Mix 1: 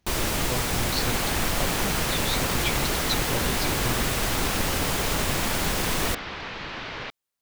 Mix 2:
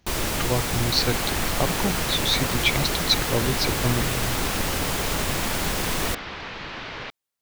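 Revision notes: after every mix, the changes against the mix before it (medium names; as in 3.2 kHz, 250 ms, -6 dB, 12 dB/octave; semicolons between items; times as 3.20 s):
speech +8.5 dB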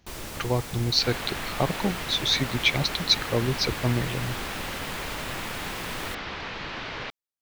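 first sound -11.5 dB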